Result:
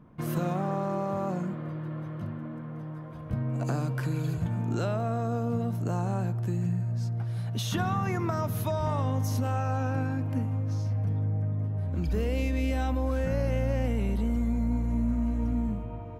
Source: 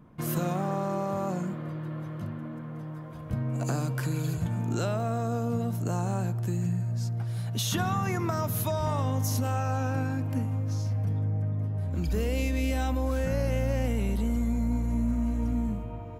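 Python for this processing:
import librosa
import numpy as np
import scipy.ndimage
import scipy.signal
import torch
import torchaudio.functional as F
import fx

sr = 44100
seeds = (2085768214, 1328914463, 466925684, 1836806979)

y = fx.high_shelf(x, sr, hz=4500.0, db=-9.0)
y = fx.notch(y, sr, hz=7100.0, q=19.0)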